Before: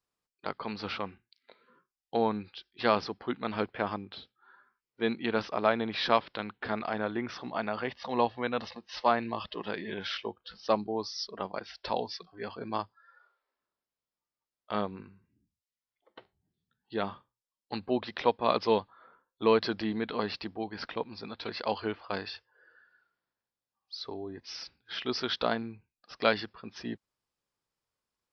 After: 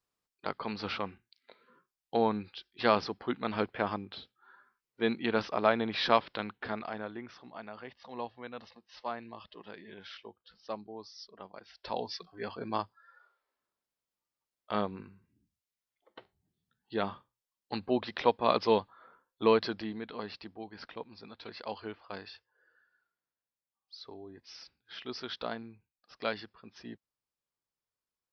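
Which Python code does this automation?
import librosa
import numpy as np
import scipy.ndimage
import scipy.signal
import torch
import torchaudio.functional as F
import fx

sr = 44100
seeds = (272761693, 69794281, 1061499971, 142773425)

y = fx.gain(x, sr, db=fx.line((6.44, 0.0), (7.4, -12.0), (11.59, -12.0), (12.13, 0.0), (19.47, 0.0), (20.02, -8.0)))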